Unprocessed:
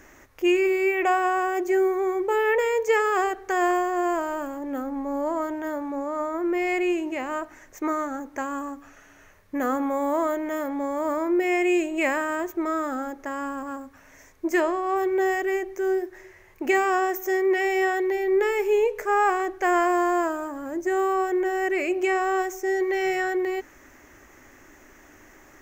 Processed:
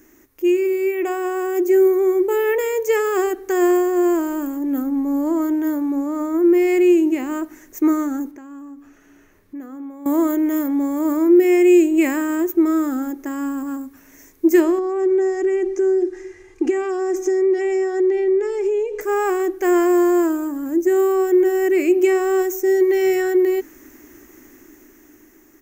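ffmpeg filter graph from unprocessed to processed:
-filter_complex "[0:a]asettb=1/sr,asplit=3[a][b][c];[a]atrim=end=8.314[d];[b]atrim=start=8.31:end=10.06,asetpts=PTS-STARTPTS,afade=t=in:d=0.004:c=qsin,afade=t=out:st=1.746:d=0.004:c=qsin,lowpass=f=3.1k:p=1,acompressor=threshold=-52dB:ratio=2:attack=3.2:release=140:knee=1:detection=peak[e];[c]atrim=start=10.056[f];[d][e]acrossfade=d=0.004:c1=hsin:c2=qsin[g];[g][f]acrossfade=d=0.004:c1=qsin:c2=hsin,asettb=1/sr,asplit=3[h][i][j];[h]atrim=end=14.784[k];[i]atrim=start=14.78:end=19.01,asetpts=PTS-STARTPTS,afade=t=in:d=0.004:c=qsin,afade=t=out:st=4.226:d=0.004:c=qsin,lowpass=f=7.8k:w=0.5412,lowpass=f=7.8k:w=1.3066,acompressor=threshold=-28dB:ratio=10:attack=3.2:release=140:knee=1:detection=peak,aecho=1:1:2.5:0.87,atrim=end_sample=186543[l];[j]atrim=start=19.006[m];[k][l]acrossfade=d=0.004:c1=hsin:c2=qsin[n];[n][m]acrossfade=d=0.004:c1=qsin:c2=hsin,dynaudnorm=f=390:g=7:m=7dB,firequalizer=gain_entry='entry(120,0);entry(320,13);entry(540,-3);entry(13000,15)':delay=0.05:min_phase=1,volume=-6.5dB"

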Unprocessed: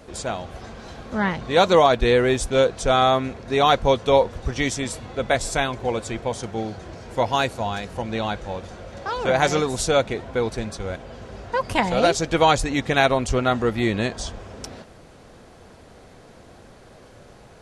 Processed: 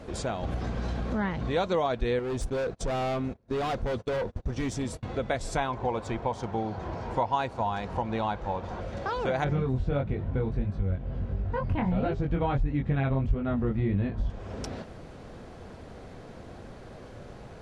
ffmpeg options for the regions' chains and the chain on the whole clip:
-filter_complex "[0:a]asettb=1/sr,asplit=3[a][b][c];[a]atrim=end=0.434[d];[b]atrim=start=0.43:end=1.68,asetpts=PTS-STARTPTS,afade=t=in:d=0.004:c=qsin,afade=t=out:st=1.246:d=0.004:c=qsin,aeval=exprs='val(0)+0.0158*(sin(2*PI*60*n/s)+sin(2*PI*2*60*n/s)/2+sin(2*PI*3*60*n/s)/3+sin(2*PI*4*60*n/s)/4+sin(2*PI*5*60*n/s)/5)':c=same,acompressor=mode=upward:threshold=-21dB:ratio=2.5:attack=3.2:release=140:knee=2.83:detection=peak[e];[c]atrim=start=1.676[f];[d][e]acrossfade=d=0.004:c1=hsin:c2=qsin[g];[g][f]acrossfade=d=0.004:c1=qsin:c2=hsin,asettb=1/sr,asplit=3[h][i][j];[h]atrim=end=2.194[k];[i]atrim=start=2.19:end=5.03,asetpts=PTS-STARTPTS,afade=t=in:d=0.004:c=qsin,afade=t=out:st=2.836:d=0.004:c=qsin,agate=range=-31dB:threshold=-34dB:ratio=16:release=100:detection=peak,equalizer=f=2.3k:t=o:w=2.8:g=-5,asoftclip=type=hard:threshold=-23dB[l];[j]atrim=start=5.026[m];[k][l]acrossfade=d=0.004:c1=hsin:c2=qsin[n];[n][m]acrossfade=d=0.004:c1=qsin:c2=hsin,asettb=1/sr,asplit=3[o][p][q];[o]atrim=end=5.574[r];[p]atrim=start=5.57:end=8.81,asetpts=PTS-STARTPTS,afade=t=in:d=0.004:c=qsin,afade=t=out:st=3.236:d=0.004:c=qsin,equalizer=f=930:w=2.2:g=10.5,adynamicsmooth=sensitivity=5.5:basefreq=7.1k[s];[q]atrim=start=8.806[t];[r][s]acrossfade=d=0.004:c1=hsin:c2=qsin[u];[u][t]acrossfade=d=0.004:c1=qsin:c2=hsin,asettb=1/sr,asplit=3[v][w][x];[v]atrim=end=9.444[y];[w]atrim=start=9.44:end=14.3,asetpts=PTS-STARTPTS,afade=t=in:d=0.004:c=qsin,afade=t=out:st=4.856:d=0.004:c=qsin,acrossover=split=3500[z][aa];[aa]acompressor=threshold=-44dB:ratio=4:attack=1:release=60[ab];[z][ab]amix=inputs=2:normalize=0,bass=f=250:g=14,treble=f=4k:g=-10,flanger=delay=20:depth=3:speed=1.5[ac];[x]atrim=start=14.296[ad];[y][ac]acrossfade=d=0.004:c1=hsin:c2=qsin[ae];[ae][ad]acrossfade=d=0.004:c1=qsin:c2=hsin,lowpass=f=4k:p=1,lowshelf=f=380:g=4.5,acompressor=threshold=-30dB:ratio=2.5"

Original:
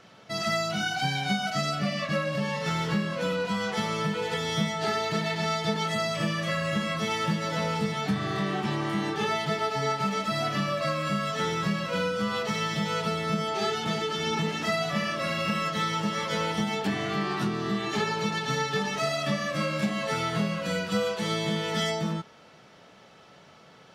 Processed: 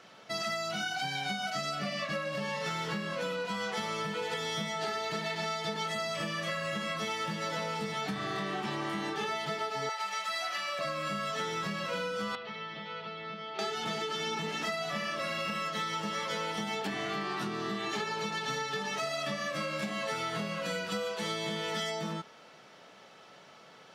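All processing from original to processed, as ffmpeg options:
-filter_complex "[0:a]asettb=1/sr,asplit=3[a][b][c];[a]atrim=end=9.894[d];[b]atrim=start=9.89:end=10.79,asetpts=PTS-STARTPTS,afade=t=in:d=0.004:c=qsin,afade=t=out:st=0.896:d=0.004:c=qsin,highpass=850,aecho=1:1:5.6:0.44,atrim=end_sample=39690[e];[c]atrim=start=10.786[f];[d][e]acrossfade=d=0.004:c1=hsin:c2=qsin[g];[g][f]acrossfade=d=0.004:c1=qsin:c2=hsin,asettb=1/sr,asplit=3[h][i][j];[h]atrim=end=12.354[k];[i]atrim=start=12.35:end=13.59,asetpts=PTS-STARTPTS,afade=t=in:d=0.004:c=qsin,afade=t=out:st=1.236:d=0.004:c=qsin,lowpass=f=3.8k:w=0.5412,lowpass=f=3.8k:w=1.3066,acrossover=split=190|1700[l][m][n];[l]acompressor=threshold=-41dB:ratio=4[o];[m]acompressor=threshold=-42dB:ratio=4[p];[n]acompressor=threshold=-46dB:ratio=4[q];[o][p][q]amix=inputs=3:normalize=0,equalizer=f=110:t=o:w=1.8:g=-7[r];[j]atrim=start=13.586[s];[k][r]acrossfade=d=0.004:c1=hsin:c2=qsin[t];[t][s]acrossfade=d=0.004:c1=qsin:c2=hsin,highpass=f=330:p=1,acompressor=threshold=-31dB:ratio=6"

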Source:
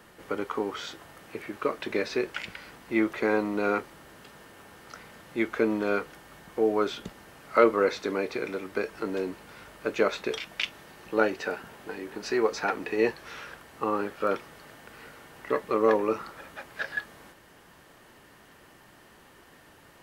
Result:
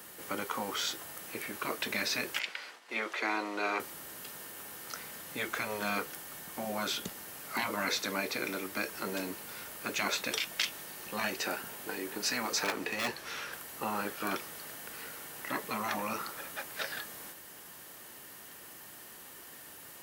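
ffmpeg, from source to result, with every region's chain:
-filter_complex "[0:a]asettb=1/sr,asplit=3[a][b][c];[a]atrim=end=2.394[d];[b]atrim=start=2.39:end=3.8,asetpts=PTS-STARTPTS,afade=t=in:d=0.004:c=qsin,afade=t=out:st=1.406:d=0.004:c=qsin,highpass=480,lowpass=5.1k,agate=range=-33dB:threshold=-48dB:ratio=3:release=100:detection=peak[e];[c]atrim=start=3.796[f];[d][e]acrossfade=d=0.004:c1=hsin:c2=qsin[g];[g][f]acrossfade=d=0.004:c1=qsin:c2=hsin,asettb=1/sr,asplit=3[h][i][j];[h]atrim=end=12.644[k];[i]atrim=start=12.64:end=13.53,asetpts=PTS-STARTPTS,afade=t=in:d=0.004:c=qsin,afade=t=out:st=0.886:d=0.004:c=qsin,highshelf=f=10k:g=-10.5,volume=21.5dB,asoftclip=hard,volume=-21.5dB[l];[j]atrim=start=13.526[m];[k][l]acrossfade=d=0.004:c1=hsin:c2=qsin[n];[n][m]acrossfade=d=0.004:c1=qsin:c2=hsin,highpass=f=120:p=1,aemphasis=mode=production:type=75fm,afftfilt=real='re*lt(hypot(re,im),0.158)':imag='im*lt(hypot(re,im),0.158)':win_size=1024:overlap=0.75"

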